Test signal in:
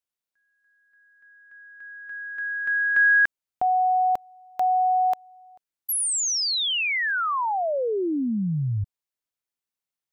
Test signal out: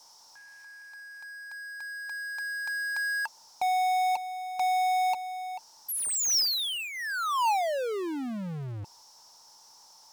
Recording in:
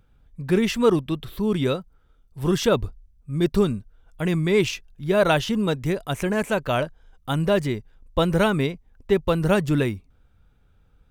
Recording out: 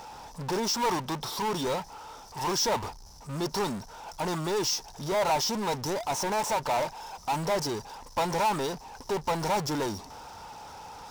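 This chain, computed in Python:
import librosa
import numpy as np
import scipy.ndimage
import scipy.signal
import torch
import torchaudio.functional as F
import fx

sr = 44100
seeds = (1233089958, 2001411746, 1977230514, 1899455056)

y = fx.double_bandpass(x, sr, hz=2200.0, octaves=2.6)
y = fx.power_curve(y, sr, exponent=0.35)
y = np.sign(y) * np.maximum(np.abs(y) - 10.0 ** (-59.0 / 20.0), 0.0)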